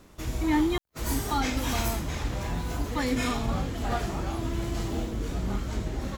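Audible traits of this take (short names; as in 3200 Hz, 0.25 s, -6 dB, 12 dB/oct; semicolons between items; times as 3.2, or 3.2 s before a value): noise floor -53 dBFS; spectral tilt -5.0 dB/oct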